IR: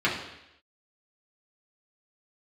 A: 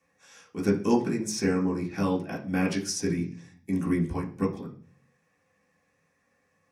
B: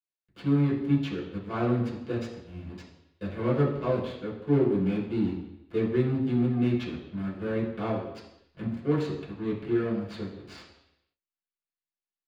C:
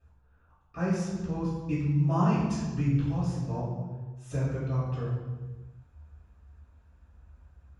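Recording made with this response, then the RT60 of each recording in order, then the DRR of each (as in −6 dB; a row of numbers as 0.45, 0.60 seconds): B; 0.45 s, 0.85 s, non-exponential decay; −7.0, −6.5, −14.0 decibels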